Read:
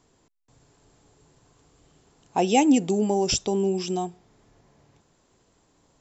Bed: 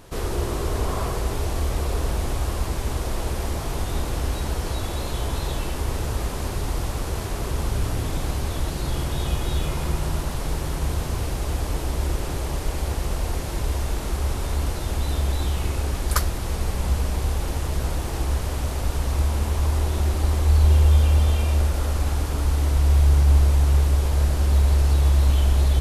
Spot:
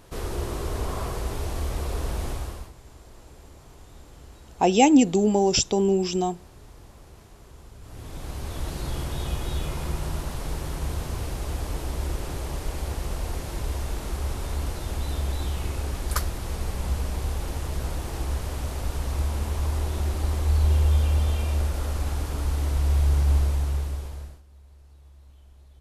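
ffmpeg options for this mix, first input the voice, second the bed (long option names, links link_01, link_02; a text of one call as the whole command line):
ffmpeg -i stem1.wav -i stem2.wav -filter_complex "[0:a]adelay=2250,volume=2.5dB[link_01];[1:a]volume=13dB,afade=type=out:start_time=2.28:duration=0.45:silence=0.133352,afade=type=in:start_time=7.81:duration=0.92:silence=0.133352,afade=type=out:start_time=23.33:duration=1.09:silence=0.0354813[link_02];[link_01][link_02]amix=inputs=2:normalize=0" out.wav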